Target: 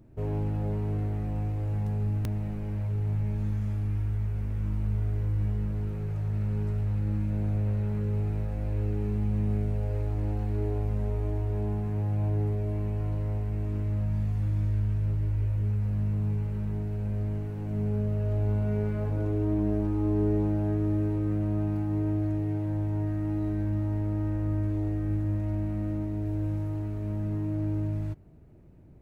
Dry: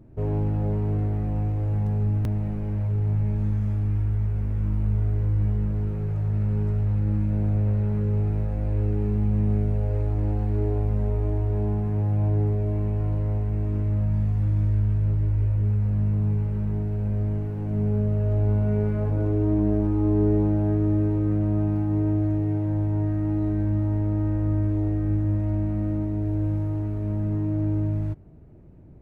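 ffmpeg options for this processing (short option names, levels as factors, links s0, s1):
-af "highshelf=f=2000:g=8.5,volume=0.562"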